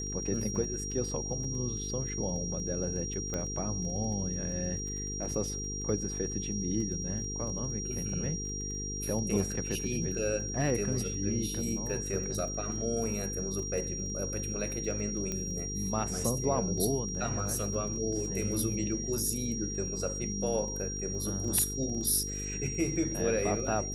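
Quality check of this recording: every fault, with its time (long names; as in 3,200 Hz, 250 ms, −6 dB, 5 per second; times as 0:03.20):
mains buzz 50 Hz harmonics 9 −39 dBFS
surface crackle 17 per second −40 dBFS
whistle 5,700 Hz −37 dBFS
0:03.34: click −21 dBFS
0:15.32: click −20 dBFS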